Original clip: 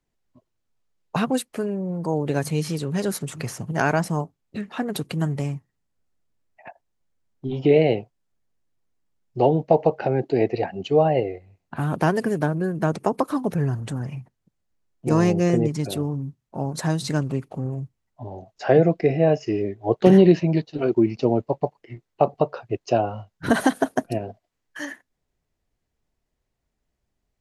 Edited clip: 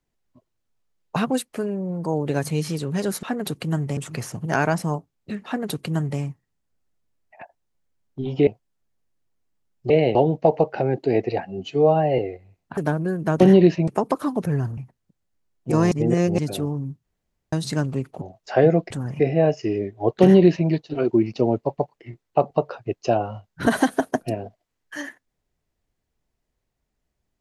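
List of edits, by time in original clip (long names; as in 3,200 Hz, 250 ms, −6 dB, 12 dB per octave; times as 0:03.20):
0:04.72–0:05.46: duplicate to 0:03.23
0:07.73–0:07.98: move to 0:09.41
0:10.71–0:11.20: time-stretch 1.5×
0:11.79–0:12.33: remove
0:13.86–0:14.15: move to 0:19.03
0:15.29–0:15.76: reverse
0:16.42–0:16.90: fill with room tone
0:17.59–0:18.34: remove
0:20.05–0:20.52: duplicate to 0:12.96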